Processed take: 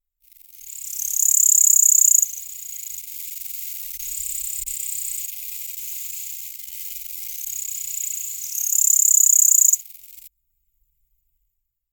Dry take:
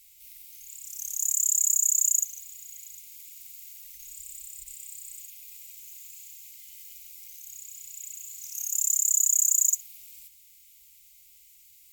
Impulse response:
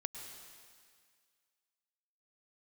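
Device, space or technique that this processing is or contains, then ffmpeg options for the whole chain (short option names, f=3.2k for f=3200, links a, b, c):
voice memo with heavy noise removal: -af "anlmdn=0.0251,dynaudnorm=f=140:g=9:m=16dB,volume=-1dB"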